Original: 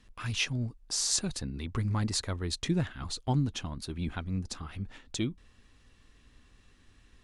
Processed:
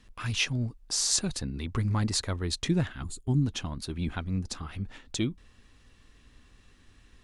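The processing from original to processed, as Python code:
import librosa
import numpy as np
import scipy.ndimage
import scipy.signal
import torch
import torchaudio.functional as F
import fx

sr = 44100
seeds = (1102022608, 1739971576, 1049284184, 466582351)

y = fx.spec_box(x, sr, start_s=3.03, length_s=0.39, low_hz=420.0, high_hz=6600.0, gain_db=-14)
y = y * librosa.db_to_amplitude(2.5)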